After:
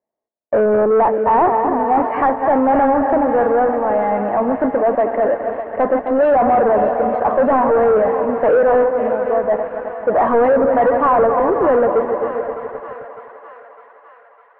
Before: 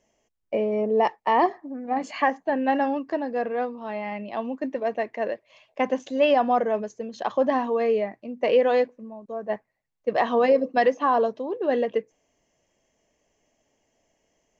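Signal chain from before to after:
feedback delay that plays each chunk backwards 131 ms, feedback 77%, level −13 dB
high-pass filter 440 Hz 6 dB per octave
leveller curve on the samples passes 5
low-pass filter 1,400 Hz 24 dB per octave
on a send: feedback echo with a high-pass in the loop 605 ms, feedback 67%, high-pass 760 Hz, level −9 dB

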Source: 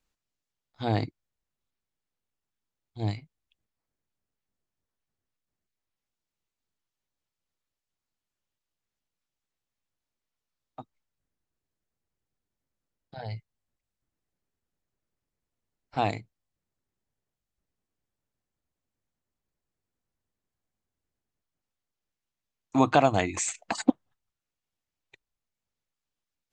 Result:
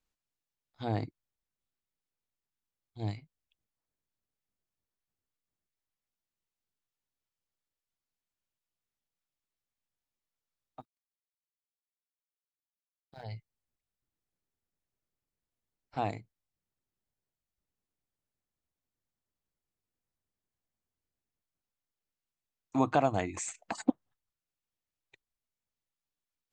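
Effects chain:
0:10.80–0:13.24: mu-law and A-law mismatch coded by A
dynamic equaliser 3,700 Hz, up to −6 dB, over −43 dBFS, Q 0.71
level −5.5 dB

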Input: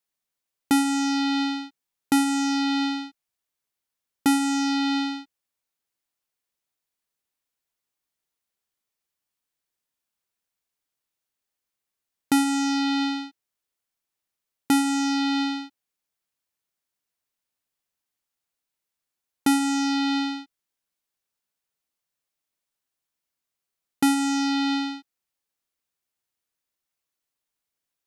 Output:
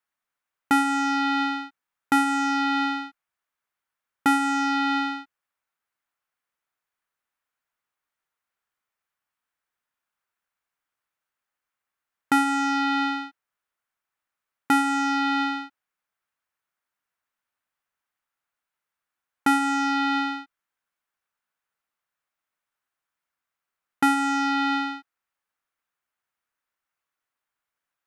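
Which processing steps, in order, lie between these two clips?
drawn EQ curve 400 Hz 0 dB, 1,400 Hz +12 dB, 4,400 Hz −3 dB
level −3 dB

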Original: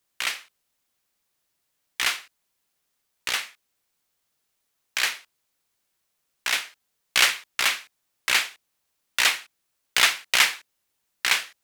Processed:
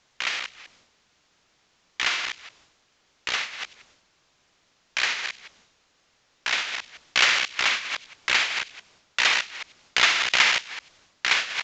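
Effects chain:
delay that plays each chunk backwards 166 ms, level −7 dB
delay with a high-pass on its return 94 ms, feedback 30%, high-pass 3,000 Hz, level −22 dB
bit-depth reduction 10 bits, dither triangular
transient designer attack +1 dB, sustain +8 dB
downsampling to 16,000 Hz
high-frequency loss of the air 64 metres

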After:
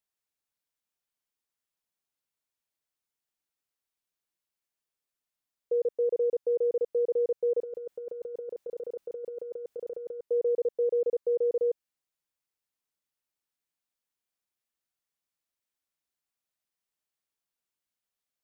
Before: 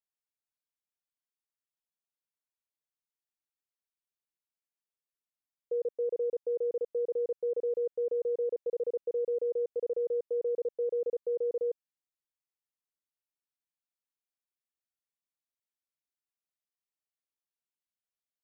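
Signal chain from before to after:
0:07.61–0:10.21: compressor whose output falls as the input rises −38 dBFS, ratio −0.5
level +4.5 dB

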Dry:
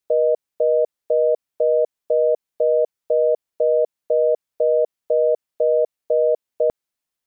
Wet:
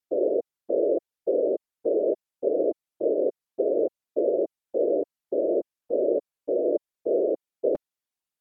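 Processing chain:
random phases in short frames
change of speed 0.864×
level −6.5 dB

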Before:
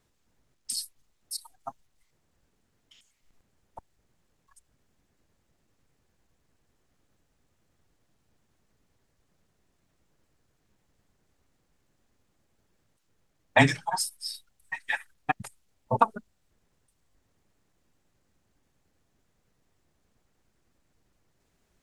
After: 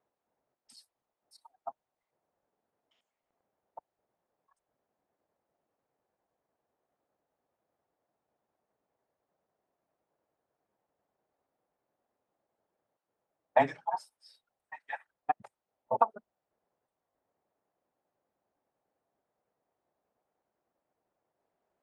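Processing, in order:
resonant band-pass 690 Hz, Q 1.8

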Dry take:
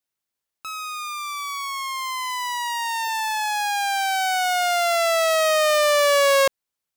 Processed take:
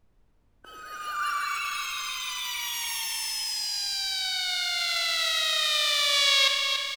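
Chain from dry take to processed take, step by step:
high-pass filter 43 Hz 12 dB per octave
high-shelf EQ 10,000 Hz +5.5 dB
in parallel at −10 dB: log-companded quantiser 2 bits
on the sum: band-pass filter sweep 260 Hz → 3,000 Hz, 0:00.47–0:01.75
formants moved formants +3 semitones
background noise brown −63 dBFS
on a send: repeating echo 66 ms, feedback 29%, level −11 dB
on the sum: spring reverb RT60 2.8 s, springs 38 ms, chirp 20 ms, DRR 6.5 dB
feedback echo at a low word length 284 ms, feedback 55%, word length 8 bits, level −6 dB

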